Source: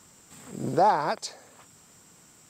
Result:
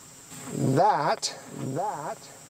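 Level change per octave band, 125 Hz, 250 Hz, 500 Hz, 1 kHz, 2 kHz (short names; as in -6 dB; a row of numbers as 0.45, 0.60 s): +8.5, +5.0, +1.5, +0.5, +1.5 dB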